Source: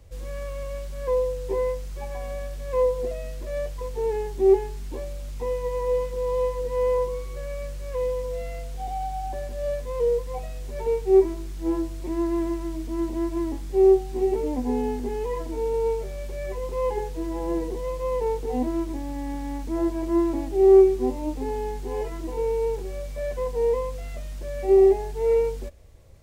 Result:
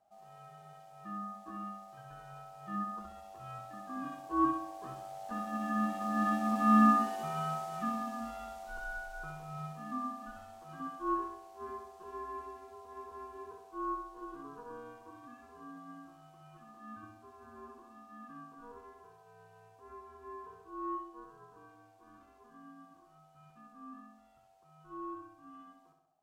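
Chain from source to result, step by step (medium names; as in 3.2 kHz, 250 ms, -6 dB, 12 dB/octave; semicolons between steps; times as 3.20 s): Doppler pass-by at 6.92 s, 7 m/s, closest 5.2 m; ring modulator 720 Hz; flutter echo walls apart 11.1 m, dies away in 0.68 s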